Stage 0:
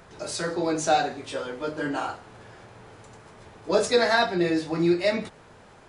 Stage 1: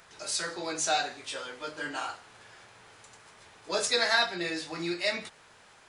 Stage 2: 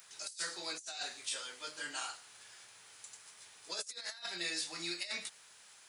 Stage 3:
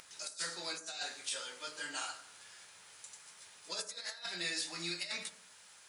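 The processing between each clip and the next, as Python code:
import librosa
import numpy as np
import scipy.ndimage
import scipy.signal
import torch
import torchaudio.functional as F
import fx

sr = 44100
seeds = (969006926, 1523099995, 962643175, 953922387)

y1 = fx.tilt_shelf(x, sr, db=-8.5, hz=910.0)
y1 = y1 * librosa.db_to_amplitude(-6.0)
y2 = scipy.signal.sosfilt(scipy.signal.butter(2, 85.0, 'highpass', fs=sr, output='sos'), y1)
y2 = F.preemphasis(torch.from_numpy(y2), 0.9).numpy()
y2 = fx.over_compress(y2, sr, threshold_db=-41.0, ratio=-0.5)
y2 = y2 * librosa.db_to_amplitude(1.5)
y3 = fx.vibrato(y2, sr, rate_hz=14.0, depth_cents=17.0)
y3 = fx.rev_fdn(y3, sr, rt60_s=0.81, lf_ratio=1.1, hf_ratio=0.35, size_ms=33.0, drr_db=7.5)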